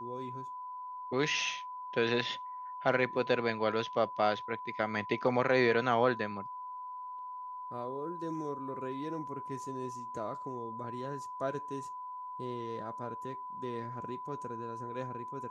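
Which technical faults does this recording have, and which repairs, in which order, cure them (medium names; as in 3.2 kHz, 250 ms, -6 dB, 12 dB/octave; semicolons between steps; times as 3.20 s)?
whine 1 kHz -40 dBFS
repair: band-stop 1 kHz, Q 30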